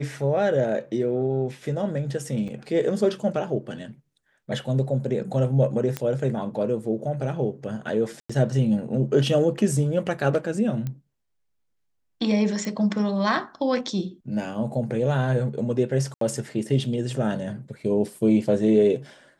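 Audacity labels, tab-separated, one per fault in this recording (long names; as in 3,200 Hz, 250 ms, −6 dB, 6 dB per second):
2.480000	2.490000	drop-out 6.3 ms
5.970000	5.970000	click −12 dBFS
8.200000	8.290000	drop-out 95 ms
10.870000	10.870000	click −19 dBFS
12.650000	12.650000	click
16.140000	16.210000	drop-out 73 ms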